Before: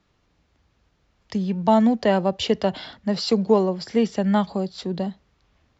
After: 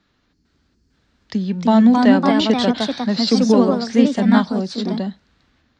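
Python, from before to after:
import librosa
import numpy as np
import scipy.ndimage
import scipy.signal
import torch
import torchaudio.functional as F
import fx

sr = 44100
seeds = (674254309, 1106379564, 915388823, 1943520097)

y = fx.spec_box(x, sr, start_s=0.33, length_s=0.6, low_hz=450.0, high_hz=4200.0, gain_db=-15)
y = fx.echo_pitch(y, sr, ms=451, semitones=2, count=2, db_per_echo=-3.0)
y = fx.graphic_eq_15(y, sr, hz=(250, 1600, 4000), db=(9, 8, 8))
y = y * librosa.db_to_amplitude(-1.5)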